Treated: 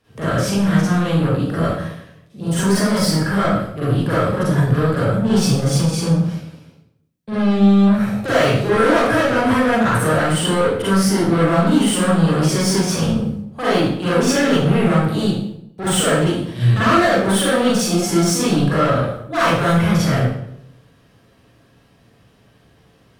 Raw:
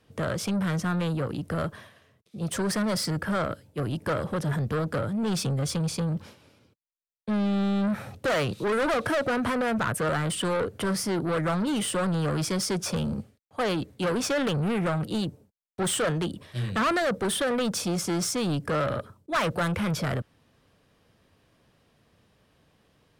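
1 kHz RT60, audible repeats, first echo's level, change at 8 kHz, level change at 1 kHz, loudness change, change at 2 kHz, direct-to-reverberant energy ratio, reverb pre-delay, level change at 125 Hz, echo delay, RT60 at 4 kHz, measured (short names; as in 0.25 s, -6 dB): 0.70 s, none, none, +8.5 dB, +10.5 dB, +11.0 dB, +10.0 dB, -10.5 dB, 37 ms, +12.0 dB, none, 0.55 s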